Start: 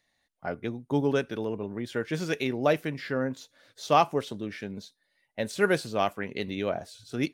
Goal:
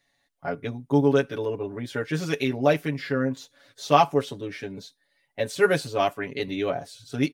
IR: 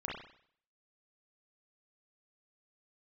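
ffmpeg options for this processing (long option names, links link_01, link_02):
-af "aecho=1:1:7.1:1"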